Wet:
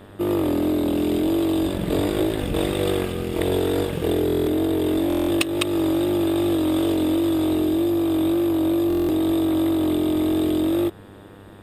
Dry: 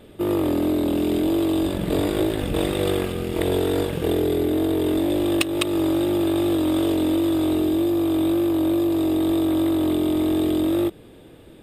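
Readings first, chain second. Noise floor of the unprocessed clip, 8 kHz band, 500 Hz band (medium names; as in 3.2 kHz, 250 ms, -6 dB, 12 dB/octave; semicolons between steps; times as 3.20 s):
-46 dBFS, 0.0 dB, 0.0 dB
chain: vibrato 3.5 Hz 6.6 cents; mains buzz 100 Hz, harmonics 19, -47 dBFS -4 dB/octave; buffer glitch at 4.26/5.08/8.88 s, samples 1024, times 8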